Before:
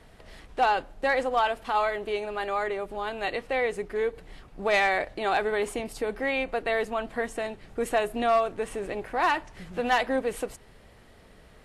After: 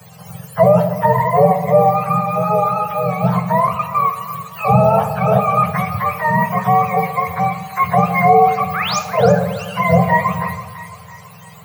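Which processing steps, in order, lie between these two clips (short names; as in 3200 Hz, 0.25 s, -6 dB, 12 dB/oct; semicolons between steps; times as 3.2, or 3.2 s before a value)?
spectrum mirrored in octaves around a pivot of 710 Hz; Chebyshev band-stop 200–440 Hz, order 5; 3.67–4.11 gate -39 dBFS, range -7 dB; 8.73–8.99 painted sound rise 1100–7500 Hz -38 dBFS; split-band echo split 940 Hz, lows 0.126 s, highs 0.331 s, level -12.5 dB; shoebox room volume 370 m³, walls mixed, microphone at 0.46 m; maximiser +16 dB; gain -1 dB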